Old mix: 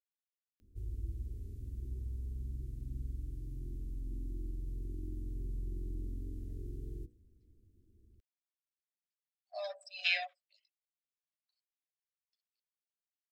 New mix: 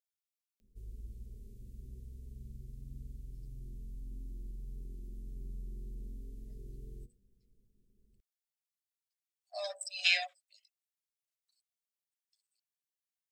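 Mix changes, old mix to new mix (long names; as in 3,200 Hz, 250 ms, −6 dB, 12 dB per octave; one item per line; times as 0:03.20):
speech: remove high-frequency loss of the air 200 metres
background: add phaser with its sweep stopped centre 310 Hz, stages 6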